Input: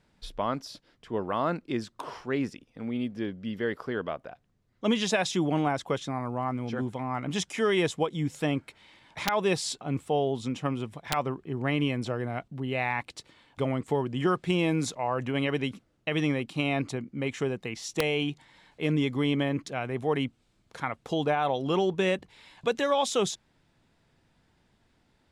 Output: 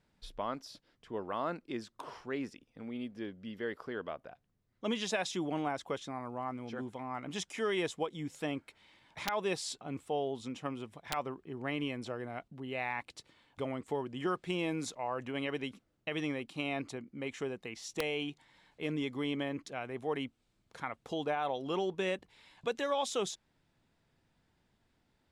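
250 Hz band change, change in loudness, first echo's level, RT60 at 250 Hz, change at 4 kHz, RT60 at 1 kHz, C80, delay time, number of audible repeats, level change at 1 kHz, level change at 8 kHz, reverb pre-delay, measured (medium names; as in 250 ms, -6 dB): -9.0 dB, -8.0 dB, no echo, no reverb, -7.0 dB, no reverb, no reverb, no echo, no echo, -7.0 dB, -7.0 dB, no reverb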